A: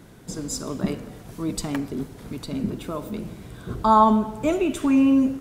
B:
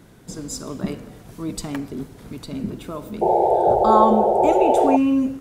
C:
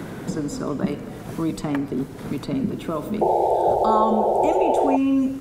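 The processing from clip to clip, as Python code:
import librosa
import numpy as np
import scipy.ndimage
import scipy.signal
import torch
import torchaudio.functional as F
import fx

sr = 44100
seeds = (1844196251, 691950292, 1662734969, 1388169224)

y1 = fx.spec_paint(x, sr, seeds[0], shape='noise', start_s=3.21, length_s=1.76, low_hz=340.0, high_hz=910.0, level_db=-16.0)
y1 = y1 * 10.0 ** (-1.0 / 20.0)
y2 = fx.band_squash(y1, sr, depth_pct=70)
y2 = y2 * 10.0 ** (-2.5 / 20.0)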